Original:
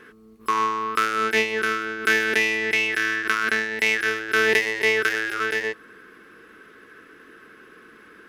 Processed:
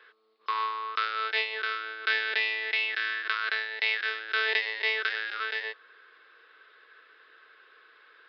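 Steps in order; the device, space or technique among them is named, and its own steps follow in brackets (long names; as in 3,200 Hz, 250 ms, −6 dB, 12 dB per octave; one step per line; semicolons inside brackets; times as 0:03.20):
musical greeting card (downsampling to 11,025 Hz; high-pass filter 530 Hz 24 dB per octave; parametric band 3,800 Hz +9 dB 0.49 octaves)
level −7.5 dB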